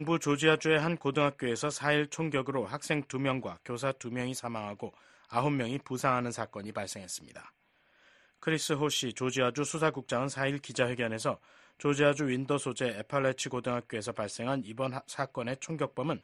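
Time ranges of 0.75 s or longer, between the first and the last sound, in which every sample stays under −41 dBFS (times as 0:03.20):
0:07.45–0:08.43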